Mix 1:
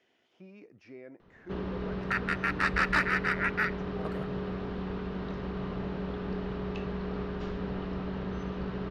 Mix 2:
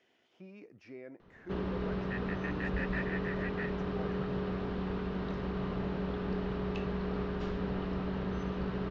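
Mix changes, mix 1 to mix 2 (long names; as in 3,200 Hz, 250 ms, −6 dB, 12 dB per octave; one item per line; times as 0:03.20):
second sound: add formant filter e
reverb: off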